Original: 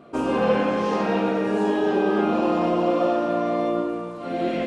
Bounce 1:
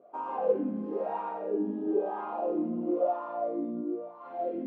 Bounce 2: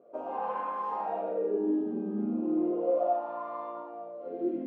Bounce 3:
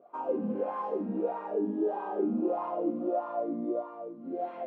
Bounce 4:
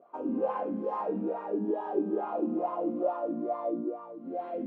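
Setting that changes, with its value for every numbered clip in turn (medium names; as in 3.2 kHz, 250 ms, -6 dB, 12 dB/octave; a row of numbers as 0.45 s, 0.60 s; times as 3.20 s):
wah-wah, rate: 1 Hz, 0.35 Hz, 1.6 Hz, 2.3 Hz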